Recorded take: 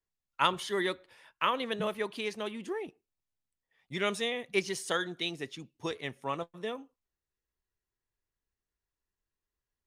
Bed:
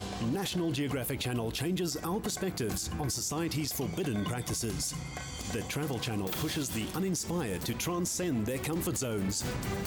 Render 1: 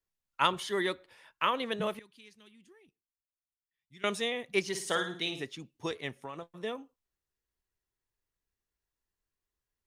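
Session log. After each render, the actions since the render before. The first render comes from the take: 1.99–4.04 passive tone stack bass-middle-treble 6-0-2; 4.67–5.42 flutter echo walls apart 9.4 m, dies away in 0.42 s; 6.17–6.64 compressor 10:1, threshold -36 dBFS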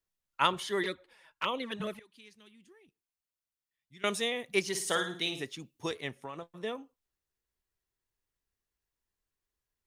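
0.83–2.14 envelope flanger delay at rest 8.7 ms, full sweep at -26 dBFS; 4.04–6.04 high shelf 7300 Hz +7.5 dB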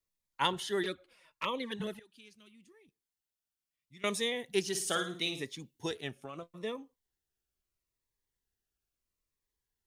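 cascading phaser falling 0.76 Hz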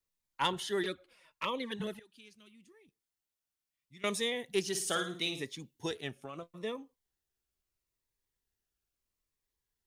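soft clip -18.5 dBFS, distortion -24 dB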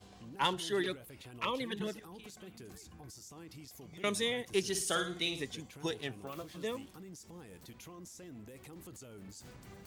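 add bed -18.5 dB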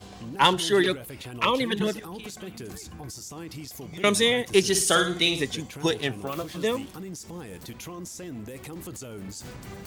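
gain +12 dB

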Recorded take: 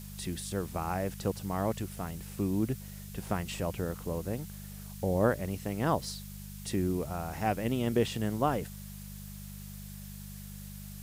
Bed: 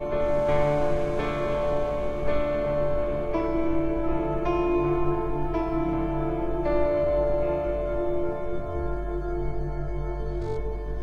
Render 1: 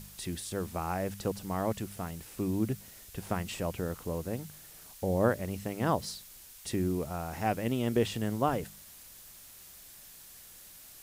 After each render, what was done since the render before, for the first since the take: de-hum 50 Hz, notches 4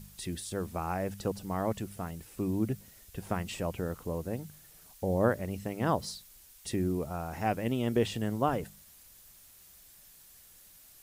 denoiser 6 dB, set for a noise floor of -52 dBFS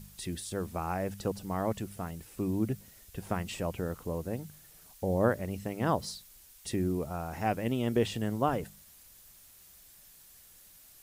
nothing audible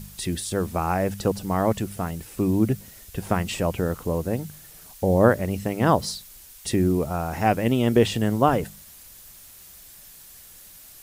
gain +9.5 dB

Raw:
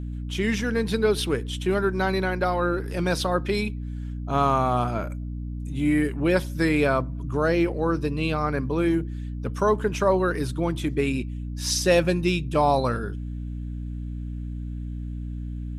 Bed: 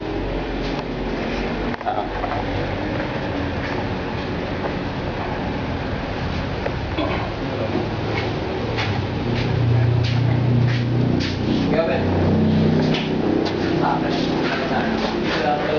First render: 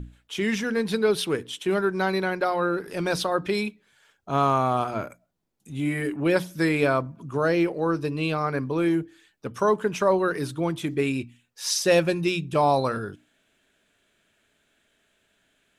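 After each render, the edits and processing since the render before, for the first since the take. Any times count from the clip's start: notches 60/120/180/240/300 Hz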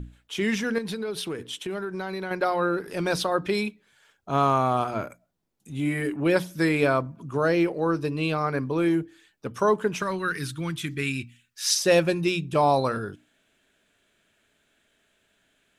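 0.78–2.31 compressor, threshold -28 dBFS; 10.02–11.75 EQ curve 160 Hz 0 dB, 690 Hz -15 dB, 1500 Hz +3 dB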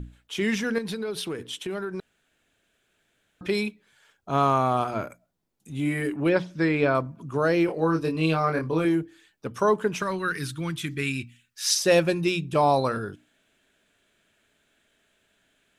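2–3.41 room tone; 6.29–6.95 air absorption 140 m; 7.66–8.85 doubler 25 ms -4 dB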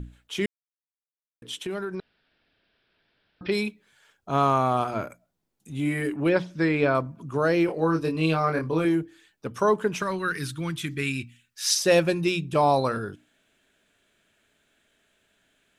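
0.46–1.42 mute; 1.95–3.52 careless resampling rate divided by 4×, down none, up filtered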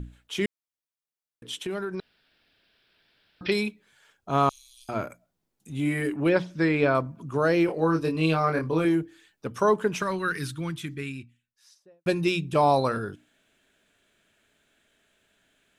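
1.97–3.52 high shelf 3700 Hz -> 2300 Hz +10 dB; 4.49–4.89 inverse Chebyshev band-stop 120–1400 Hz, stop band 60 dB; 10.22–12.06 studio fade out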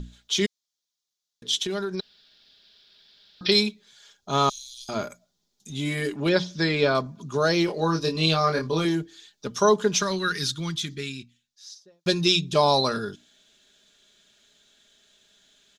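band shelf 4800 Hz +14 dB 1.3 oct; comb 4.9 ms, depth 41%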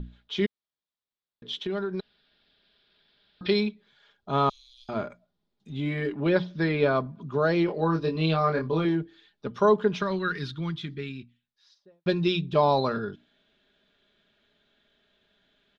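air absorption 400 m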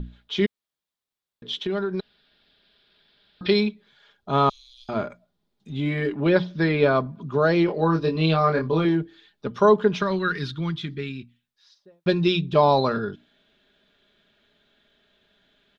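gain +4 dB

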